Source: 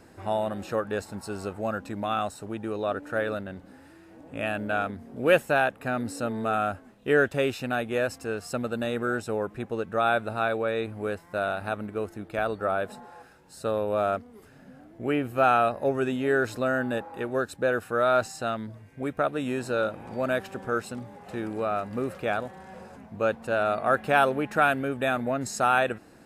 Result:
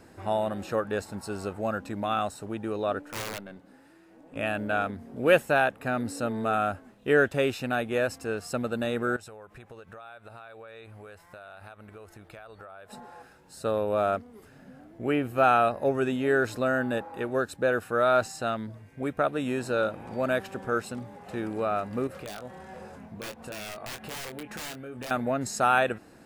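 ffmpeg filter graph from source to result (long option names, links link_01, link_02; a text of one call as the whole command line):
ffmpeg -i in.wav -filter_complex "[0:a]asettb=1/sr,asplit=3[link_01][link_02][link_03];[link_01]atrim=end=3.024[link_04];[link_02]atrim=start=3.02:end=4.36,asetpts=PTS-STARTPTS,afade=type=in:duration=0.004:curve=qsin,afade=type=out:start_time=1.336:duration=0.004:curve=qsin,highpass=150,aeval=exprs='(tanh(25.1*val(0)+0.75)-tanh(0.75))/25.1':channel_layout=same,aeval=exprs='(mod(22.4*val(0)+1,2)-1)/22.4':channel_layout=same[link_05];[link_03]atrim=start=4.356[link_06];[link_04][link_05]acrossfade=duration=0.004:curve1=hsin:curve2=qsin[link_07];[link_07][link_06]acrossfade=duration=0.004:curve1=qsin:curve2=hsin,asettb=1/sr,asplit=3[link_08][link_09][link_10];[link_08]atrim=end=9.164[link_11];[link_09]atrim=start=9.16:end=12.93,asetpts=PTS-STARTPTS,afade=type=in:duration=0.004:curve=qsin,afade=type=out:start_time=3.766:duration=0.004:curve=qsin,equalizer=frequency=250:width=0.81:gain=-11.5,acompressor=threshold=-42dB:ratio=10:attack=3.2:release=140:knee=1:detection=peak[link_12];[link_10]atrim=start=12.926[link_13];[link_11][link_12]acrossfade=duration=0.004:curve1=hsin:curve2=qsin[link_14];[link_14][link_13]acrossfade=duration=0.004:curve1=qsin:curve2=hsin,asettb=1/sr,asplit=3[link_15][link_16][link_17];[link_15]atrim=end=22.074[link_18];[link_16]atrim=start=22.07:end=25.11,asetpts=PTS-STARTPTS,afade=type=in:duration=0.004:curve=qsin,afade=type=out:start_time=3.036:duration=0.004:curve=qsin,aeval=exprs='(mod(8.41*val(0)+1,2)-1)/8.41':channel_layout=same,acompressor=threshold=-37dB:ratio=6:attack=3.2:release=140:knee=1:detection=peak,asplit=2[link_19][link_20];[link_20]adelay=24,volume=-7.5dB[link_21];[link_19][link_21]amix=inputs=2:normalize=0,atrim=end_sample=134064[link_22];[link_17]atrim=start=25.106[link_23];[link_18][link_22]acrossfade=duration=0.004:curve1=hsin:curve2=qsin[link_24];[link_24][link_23]acrossfade=duration=0.004:curve1=qsin:curve2=hsin" out.wav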